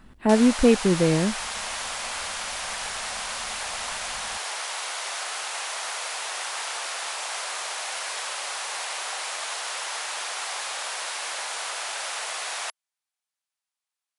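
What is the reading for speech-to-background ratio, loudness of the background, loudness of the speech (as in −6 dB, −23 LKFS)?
9.0 dB, −30.0 LKFS, −21.0 LKFS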